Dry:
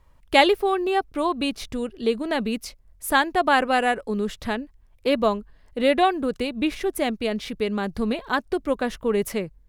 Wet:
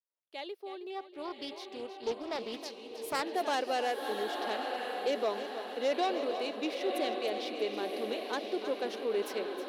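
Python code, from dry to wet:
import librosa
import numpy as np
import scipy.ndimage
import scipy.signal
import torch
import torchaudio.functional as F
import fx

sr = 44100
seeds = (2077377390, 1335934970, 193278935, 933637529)

y = fx.fade_in_head(x, sr, length_s=2.97)
y = fx.high_shelf_res(y, sr, hz=6000.0, db=-7.5, q=1.5)
y = fx.echo_diffused(y, sr, ms=1056, feedback_pct=44, wet_db=-6.0)
y = 10.0 ** (-15.0 / 20.0) * np.tanh(y / 10.0 ** (-15.0 / 20.0))
y = scipy.signal.sosfilt(scipy.signal.butter(4, 340.0, 'highpass', fs=sr, output='sos'), y)
y = fx.peak_eq(y, sr, hz=1400.0, db=-8.5, octaves=1.7)
y = fx.echo_feedback(y, sr, ms=317, feedback_pct=40, wet_db=-11)
y = fx.doppler_dist(y, sr, depth_ms=0.26, at=(0.9, 3.23))
y = F.gain(torch.from_numpy(y), -5.0).numpy()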